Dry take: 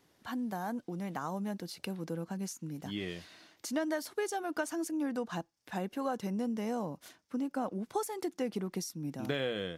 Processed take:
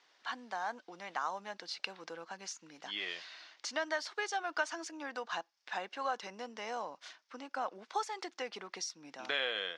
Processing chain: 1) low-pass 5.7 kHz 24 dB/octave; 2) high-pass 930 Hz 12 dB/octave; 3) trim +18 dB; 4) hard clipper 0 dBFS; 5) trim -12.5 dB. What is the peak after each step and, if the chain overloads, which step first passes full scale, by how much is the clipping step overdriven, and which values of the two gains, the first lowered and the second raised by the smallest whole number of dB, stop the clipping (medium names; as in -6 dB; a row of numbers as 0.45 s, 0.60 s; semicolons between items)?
-19.0 dBFS, -23.0 dBFS, -5.0 dBFS, -5.0 dBFS, -17.5 dBFS; nothing clips